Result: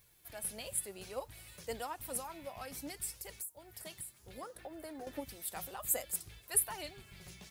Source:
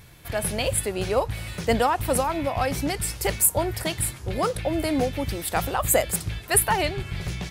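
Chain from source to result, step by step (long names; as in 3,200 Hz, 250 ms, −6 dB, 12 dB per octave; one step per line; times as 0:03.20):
first-order pre-emphasis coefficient 0.97
0:04.42–0:05.20: gain on a spectral selection 200–2,000 Hz +9 dB
tilt shelving filter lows +9 dB
0:03.10–0:05.07: downward compressor 6 to 1, threshold −40 dBFS, peak gain reduction 18 dB
flanger 0.62 Hz, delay 1.7 ms, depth 3.9 ms, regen +51%
background noise violet −78 dBFS
level +1 dB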